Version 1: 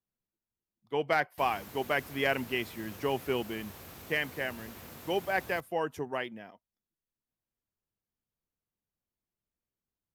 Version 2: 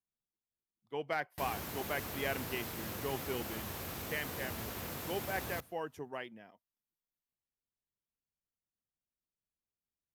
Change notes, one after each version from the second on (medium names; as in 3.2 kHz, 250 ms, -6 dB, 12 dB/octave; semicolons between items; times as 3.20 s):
speech -8.0 dB; background +6.0 dB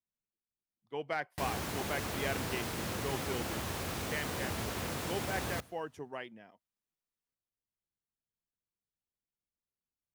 background +5.5 dB; master: add peaking EQ 13 kHz -14 dB 0.22 oct